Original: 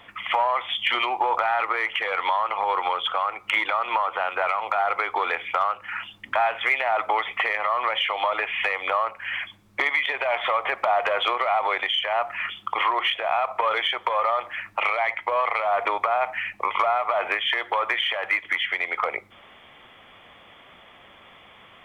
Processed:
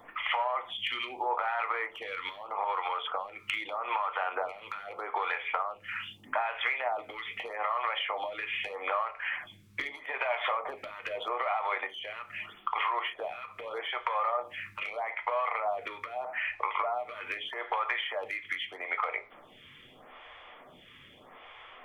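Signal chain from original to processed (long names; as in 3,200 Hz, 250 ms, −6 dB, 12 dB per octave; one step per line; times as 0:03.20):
downward compressor, threshold −27 dBFS, peak gain reduction 10 dB
convolution reverb RT60 0.30 s, pre-delay 7 ms, DRR 7 dB
phaser with staggered stages 0.8 Hz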